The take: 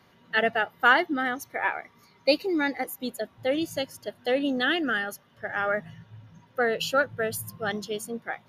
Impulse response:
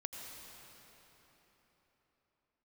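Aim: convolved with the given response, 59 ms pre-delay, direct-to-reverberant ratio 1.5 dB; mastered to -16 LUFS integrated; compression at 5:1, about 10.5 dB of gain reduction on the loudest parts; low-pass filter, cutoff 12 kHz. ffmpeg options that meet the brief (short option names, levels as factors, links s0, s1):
-filter_complex "[0:a]lowpass=12000,acompressor=threshold=0.0501:ratio=5,asplit=2[s0][s1];[1:a]atrim=start_sample=2205,adelay=59[s2];[s1][s2]afir=irnorm=-1:irlink=0,volume=0.944[s3];[s0][s3]amix=inputs=2:normalize=0,volume=5.01"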